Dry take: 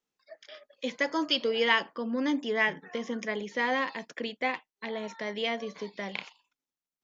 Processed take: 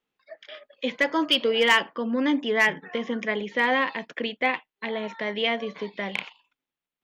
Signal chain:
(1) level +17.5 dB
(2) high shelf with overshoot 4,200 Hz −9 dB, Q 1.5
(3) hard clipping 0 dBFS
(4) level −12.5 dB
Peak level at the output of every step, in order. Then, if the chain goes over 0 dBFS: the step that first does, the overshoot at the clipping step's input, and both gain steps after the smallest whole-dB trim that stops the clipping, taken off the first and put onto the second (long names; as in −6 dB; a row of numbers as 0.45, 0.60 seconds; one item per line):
+6.0, +6.5, 0.0, −12.5 dBFS
step 1, 6.5 dB
step 1 +10.5 dB, step 4 −5.5 dB